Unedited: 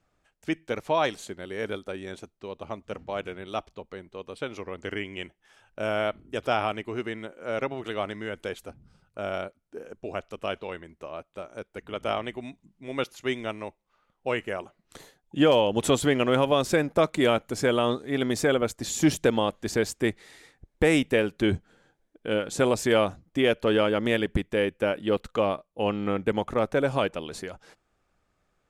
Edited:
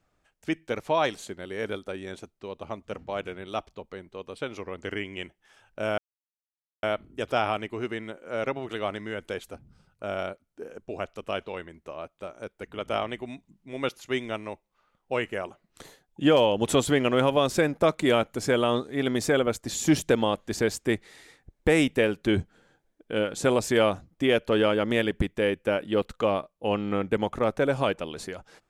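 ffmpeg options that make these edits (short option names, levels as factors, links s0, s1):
-filter_complex "[0:a]asplit=2[s0][s1];[s0]atrim=end=5.98,asetpts=PTS-STARTPTS,afade=t=out:st=5.976:d=0.004:c=hsin,apad=pad_dur=0.85[s2];[s1]atrim=start=5.98,asetpts=PTS-STARTPTS,afade=t=in:d=0.004:c=hsin[s3];[s2][s3]concat=n=2:v=0:a=1"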